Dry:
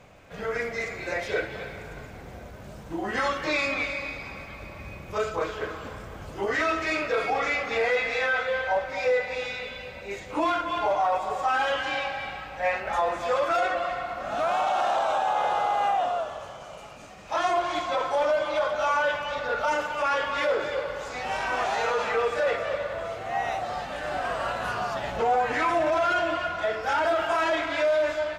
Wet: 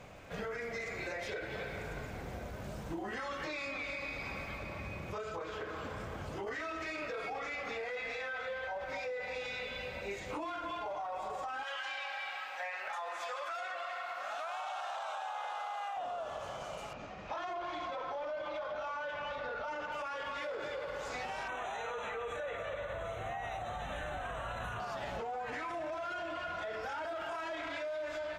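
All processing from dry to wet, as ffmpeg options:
-filter_complex "[0:a]asettb=1/sr,asplit=3[a][b][c];[a]atrim=end=4.584[d];[b]atrim=start=4.58:end=6.47,asetpts=PTS-STARTPTS,afade=t=in:d=0.004:c=qsin,afade=t=out:st=1.886:d=0.004:c=qsin,highpass=57,highshelf=f=8.4k:g=-6,acompressor=threshold=-36dB:ratio=2.5:attack=3.2:release=140:knee=1:detection=peak[e];[c]atrim=start=6.466[f];[d][e]acrossfade=d=0.004:c1=hsin:c2=qsin[g];[g][f]acrossfade=d=0.004:c1=qsin:c2=hsin,asettb=1/sr,asplit=3[h][i][j];[h]atrim=end=11.634[k];[i]atrim=start=11.63:end=15.97,asetpts=PTS-STARTPTS,afade=t=in:d=0.004:c=qsin,afade=t=out:st=4.336:d=0.004:c=qsin,highpass=920,acompressor=threshold=-31dB:ratio=3:attack=3.2:release=140:knee=1:detection=peak[l];[j]atrim=start=15.966[m];[k][l]acrossfade=d=0.004:c1=hsin:c2=qsin[n];[n][m]acrossfade=d=0.004:c1=qsin:c2=hsin,asettb=1/sr,asplit=3[o][p][q];[o]atrim=end=16.934[r];[p]atrim=start=16.93:end=19.92,asetpts=PTS-STARTPTS,afade=t=in:d=0.004:c=qsin,afade=t=out:st=2.986:d=0.004:c=qsin,adynamicsmooth=sensitivity=2.5:basefreq=3.9k,lowpass=f=7.4k:w=0.5412,lowpass=f=7.4k:w=1.3066[s];[q]atrim=start=19.916[t];[r][s]acrossfade=d=0.004:c1=hsin:c2=qsin[u];[u][t]acrossfade=d=0.004:c1=qsin:c2=hsin,asettb=1/sr,asplit=3[v][w][x];[v]atrim=end=21.484[y];[w]atrim=start=21.48:end=24.8,asetpts=PTS-STARTPTS,afade=t=in:d=0.004:c=qsin,afade=t=out:st=3.316:d=0.004:c=qsin,asuperstop=centerf=4900:order=20:qfactor=2.9,asubboost=boost=4.5:cutoff=150[z];[x]atrim=start=24.796[aa];[y][z]acrossfade=d=0.004:c1=hsin:c2=qsin[ab];[ab][aa]acrossfade=d=0.004:c1=qsin:c2=hsin,alimiter=level_in=0.5dB:limit=-24dB:level=0:latency=1:release=41,volume=-0.5dB,acompressor=threshold=-37dB:ratio=6"

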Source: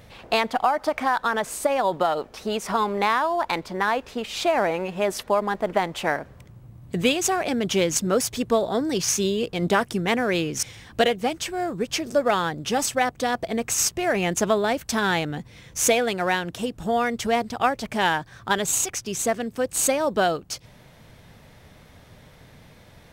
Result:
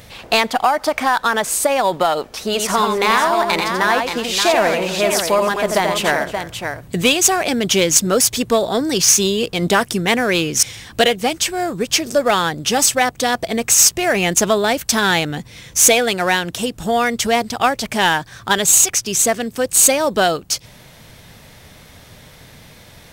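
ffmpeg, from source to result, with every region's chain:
-filter_complex "[0:a]asettb=1/sr,asplit=3[a][b][c];[a]atrim=end=2.444[d];[b]atrim=start=2.44:end=6.88,asetpts=PTS-STARTPTS,afade=t=in:d=0.004:c=qsin,afade=t=out:st=4.436:d=0.004:c=qsin,bandreject=f=820:w=16,aecho=1:1:87|311|577:0.562|0.133|0.422,atrim=end_sample=195804[e];[c]atrim=start=6.876[f];[d][e]acrossfade=d=0.004:c1=hsin:c2=qsin[g];[g][f]acrossfade=d=0.004:c1=qsin:c2=hsin,highshelf=f=2.6k:g=9,acontrast=61,volume=-1dB"

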